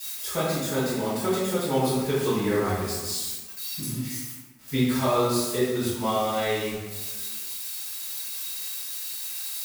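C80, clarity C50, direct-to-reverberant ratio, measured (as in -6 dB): 2.0 dB, -0.5 dB, -12.5 dB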